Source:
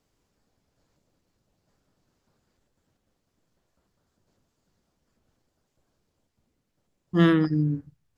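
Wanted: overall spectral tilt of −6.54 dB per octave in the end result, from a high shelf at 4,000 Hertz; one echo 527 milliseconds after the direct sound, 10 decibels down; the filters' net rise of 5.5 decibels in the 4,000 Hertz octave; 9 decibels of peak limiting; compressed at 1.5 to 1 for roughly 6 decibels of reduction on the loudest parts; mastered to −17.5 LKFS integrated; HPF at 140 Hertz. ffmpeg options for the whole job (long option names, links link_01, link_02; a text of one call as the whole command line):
ffmpeg -i in.wav -af "highpass=140,highshelf=frequency=4000:gain=5.5,equalizer=frequency=4000:width_type=o:gain=4.5,acompressor=threshold=-31dB:ratio=1.5,alimiter=limit=-23.5dB:level=0:latency=1,aecho=1:1:527:0.316,volume=15.5dB" out.wav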